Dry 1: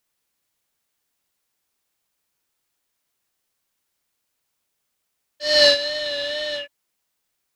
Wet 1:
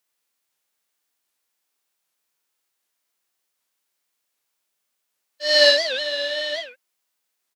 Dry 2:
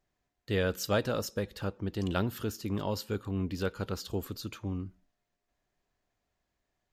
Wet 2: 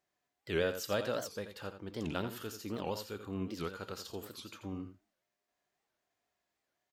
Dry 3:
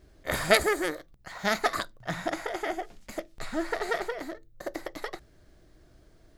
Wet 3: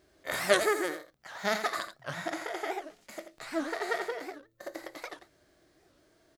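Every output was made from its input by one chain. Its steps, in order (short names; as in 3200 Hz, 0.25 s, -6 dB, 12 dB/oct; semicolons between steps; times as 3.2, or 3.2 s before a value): HPF 410 Hz 6 dB/oct; harmonic-percussive split harmonic +8 dB; on a send: echo 84 ms -10 dB; on the sum: record warp 78 rpm, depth 250 cents; gain -6 dB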